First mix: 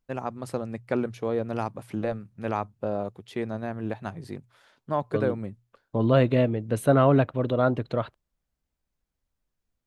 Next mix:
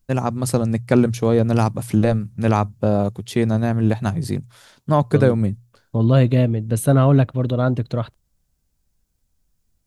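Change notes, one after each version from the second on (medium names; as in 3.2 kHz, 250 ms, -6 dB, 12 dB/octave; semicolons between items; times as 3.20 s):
first voice +8.0 dB; master: add tone controls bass +10 dB, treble +12 dB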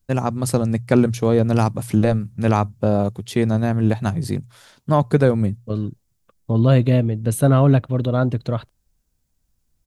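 second voice: entry +0.55 s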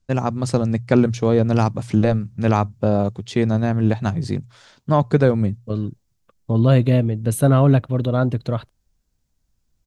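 first voice: add low-pass 7.3 kHz 24 dB/octave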